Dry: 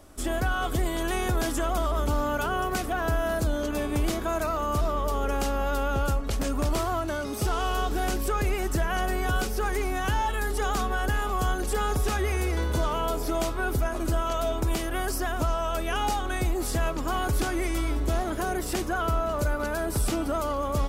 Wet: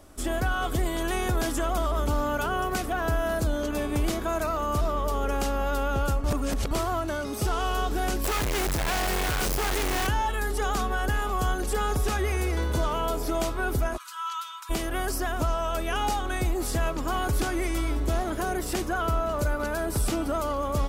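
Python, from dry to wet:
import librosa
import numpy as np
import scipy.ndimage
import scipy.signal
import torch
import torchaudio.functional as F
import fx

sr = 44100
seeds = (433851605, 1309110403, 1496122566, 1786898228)

y = fx.clip_1bit(x, sr, at=(8.24, 10.07))
y = fx.cheby_ripple_highpass(y, sr, hz=930.0, ripple_db=6, at=(13.96, 14.69), fade=0.02)
y = fx.edit(y, sr, fx.reverse_span(start_s=6.24, length_s=0.47), tone=tone)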